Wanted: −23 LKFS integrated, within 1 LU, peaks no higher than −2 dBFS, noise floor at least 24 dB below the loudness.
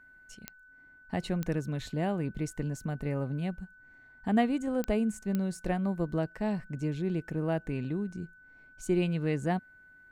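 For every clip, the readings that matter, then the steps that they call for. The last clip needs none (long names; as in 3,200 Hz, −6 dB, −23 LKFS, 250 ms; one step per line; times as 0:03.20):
number of clicks 4; interfering tone 1,500 Hz; level of the tone −54 dBFS; integrated loudness −32.5 LKFS; sample peak −13.0 dBFS; target loudness −23.0 LKFS
→ click removal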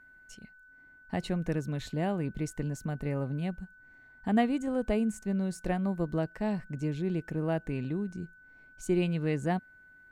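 number of clicks 0; interfering tone 1,500 Hz; level of the tone −54 dBFS
→ notch filter 1,500 Hz, Q 30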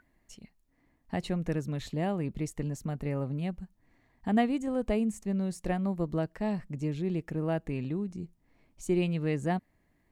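interfering tone none found; integrated loudness −32.5 LKFS; sample peak −13.5 dBFS; target loudness −23.0 LKFS
→ level +9.5 dB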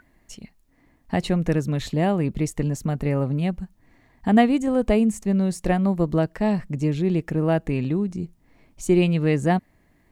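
integrated loudness −23.0 LKFS; sample peak −4.0 dBFS; background noise floor −62 dBFS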